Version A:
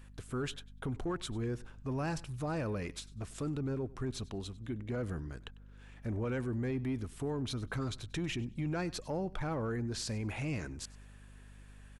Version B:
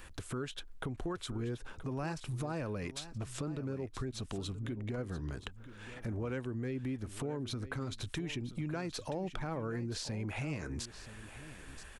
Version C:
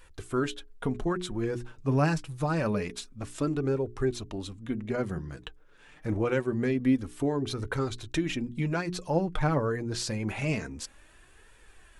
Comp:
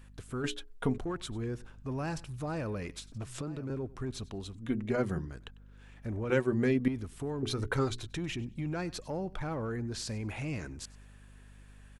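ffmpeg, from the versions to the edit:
-filter_complex "[2:a]asplit=4[a][b][c][d];[0:a]asplit=6[e][f][g][h][i][j];[e]atrim=end=0.442[k];[a]atrim=start=0.438:end=0.982[l];[f]atrim=start=0.978:end=3.122[m];[1:a]atrim=start=3.118:end=3.702[n];[g]atrim=start=3.698:end=4.552[o];[b]atrim=start=4.548:end=5.252[p];[h]atrim=start=5.248:end=6.302[q];[c]atrim=start=6.298:end=6.882[r];[i]atrim=start=6.878:end=7.432[s];[d]atrim=start=7.428:end=8.072[t];[j]atrim=start=8.068[u];[k][l]acrossfade=d=0.004:c1=hsin:c2=hsin[v];[v][m]acrossfade=d=0.004:c1=hsin:c2=hsin[w];[w][n]acrossfade=d=0.004:c1=hsin:c2=hsin[x];[x][o]acrossfade=d=0.004:c1=hsin:c2=hsin[y];[y][p]acrossfade=d=0.004:c1=hsin:c2=hsin[z];[z][q]acrossfade=d=0.004:c1=hsin:c2=hsin[aa];[aa][r]acrossfade=d=0.004:c1=hsin:c2=hsin[ab];[ab][s]acrossfade=d=0.004:c1=hsin:c2=hsin[ac];[ac][t]acrossfade=d=0.004:c1=hsin:c2=hsin[ad];[ad][u]acrossfade=d=0.004:c1=hsin:c2=hsin"

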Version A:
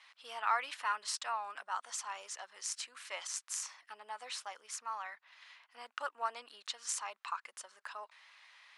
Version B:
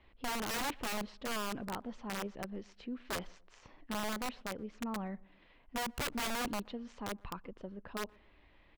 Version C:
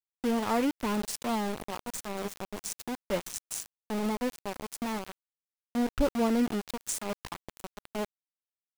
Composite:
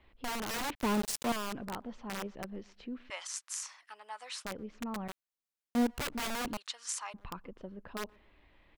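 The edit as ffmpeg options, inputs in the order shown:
-filter_complex "[2:a]asplit=2[a][b];[0:a]asplit=2[c][d];[1:a]asplit=5[e][f][g][h][i];[e]atrim=end=0.752[j];[a]atrim=start=0.748:end=1.322[k];[f]atrim=start=1.318:end=3.102[l];[c]atrim=start=3.098:end=4.452[m];[g]atrim=start=4.448:end=5.082[n];[b]atrim=start=5.078:end=5.872[o];[h]atrim=start=5.868:end=6.572[p];[d]atrim=start=6.568:end=7.142[q];[i]atrim=start=7.138[r];[j][k]acrossfade=d=0.004:c1=hsin:c2=hsin[s];[s][l]acrossfade=d=0.004:c1=hsin:c2=hsin[t];[t][m]acrossfade=d=0.004:c1=hsin:c2=hsin[u];[u][n]acrossfade=d=0.004:c1=hsin:c2=hsin[v];[v][o]acrossfade=d=0.004:c1=hsin:c2=hsin[w];[w][p]acrossfade=d=0.004:c1=hsin:c2=hsin[x];[x][q]acrossfade=d=0.004:c1=hsin:c2=hsin[y];[y][r]acrossfade=d=0.004:c1=hsin:c2=hsin"

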